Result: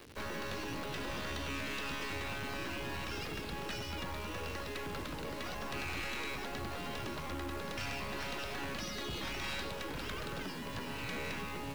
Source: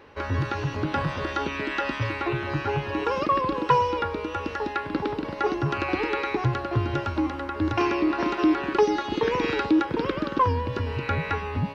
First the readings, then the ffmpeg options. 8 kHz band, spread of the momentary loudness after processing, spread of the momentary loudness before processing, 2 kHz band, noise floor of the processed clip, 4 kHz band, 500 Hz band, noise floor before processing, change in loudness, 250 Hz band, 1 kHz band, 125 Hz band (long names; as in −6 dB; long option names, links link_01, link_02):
can't be measured, 3 LU, 6 LU, −9.0 dB, −42 dBFS, −4.0 dB, −16.0 dB, −35 dBFS, −13.5 dB, −17.0 dB, −16.5 dB, −15.5 dB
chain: -filter_complex "[0:a]afftfilt=real='re*lt(hypot(re,im),0.141)':imag='im*lt(hypot(re,im),0.141)':win_size=1024:overlap=0.75,acrossover=split=100|390|3200[link_01][link_02][link_03][link_04];[link_03]acrusher=bits=5:dc=4:mix=0:aa=0.000001[link_05];[link_01][link_02][link_05][link_04]amix=inputs=4:normalize=0,asoftclip=type=tanh:threshold=-33dB"